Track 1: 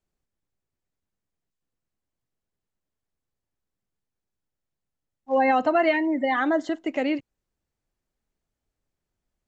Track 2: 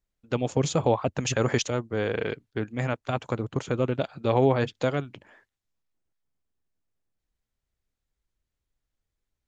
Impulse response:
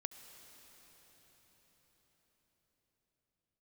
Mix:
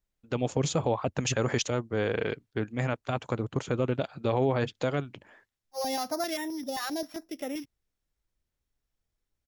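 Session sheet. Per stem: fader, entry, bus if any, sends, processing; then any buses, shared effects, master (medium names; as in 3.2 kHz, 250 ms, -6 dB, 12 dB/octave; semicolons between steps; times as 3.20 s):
-9.5 dB, 0.45 s, no send, sorted samples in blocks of 8 samples; step-sequenced notch 7.6 Hz 260–4500 Hz
-1.0 dB, 0.00 s, no send, none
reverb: none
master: peak limiter -15 dBFS, peak gain reduction 5 dB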